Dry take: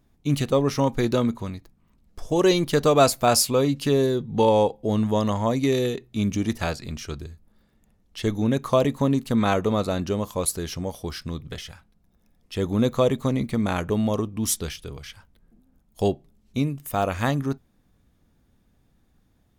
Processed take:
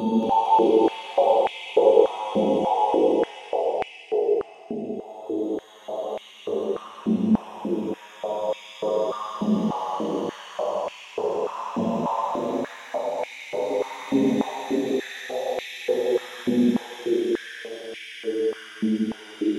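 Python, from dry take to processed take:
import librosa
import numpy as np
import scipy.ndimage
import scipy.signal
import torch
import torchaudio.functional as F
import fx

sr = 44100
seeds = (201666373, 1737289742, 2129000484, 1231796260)

y = fx.paulstretch(x, sr, seeds[0], factor=11.0, window_s=0.25, from_s=4.37)
y = fx.echo_pitch(y, sr, ms=228, semitones=-2, count=2, db_per_echo=-3.0)
y = fx.filter_held_highpass(y, sr, hz=3.4, low_hz=230.0, high_hz=2300.0)
y = F.gain(torch.from_numpy(y), -8.0).numpy()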